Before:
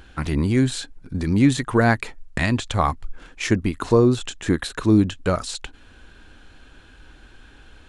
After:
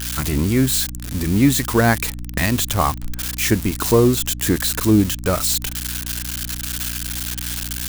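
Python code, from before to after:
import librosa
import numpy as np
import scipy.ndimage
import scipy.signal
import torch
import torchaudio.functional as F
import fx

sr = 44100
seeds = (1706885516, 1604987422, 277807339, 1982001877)

y = x + 0.5 * 10.0 ** (-15.5 / 20.0) * np.diff(np.sign(x), prepend=np.sign(x[:1]))
y = fx.add_hum(y, sr, base_hz=60, snr_db=11)
y = y * 10.0 ** (1.5 / 20.0)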